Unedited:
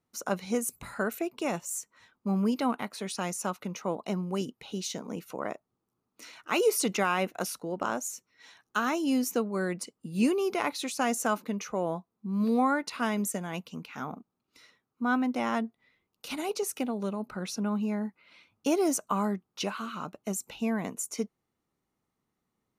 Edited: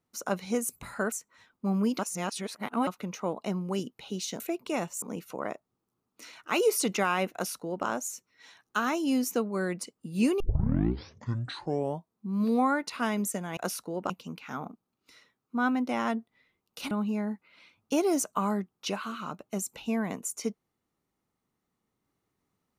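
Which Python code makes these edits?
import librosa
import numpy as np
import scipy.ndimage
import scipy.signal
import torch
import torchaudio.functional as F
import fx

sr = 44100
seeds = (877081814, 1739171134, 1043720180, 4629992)

y = fx.edit(x, sr, fx.move(start_s=1.12, length_s=0.62, to_s=5.02),
    fx.reverse_span(start_s=2.61, length_s=0.88),
    fx.duplicate(start_s=7.33, length_s=0.53, to_s=13.57),
    fx.tape_start(start_s=10.4, length_s=1.73),
    fx.cut(start_s=16.38, length_s=1.27), tone=tone)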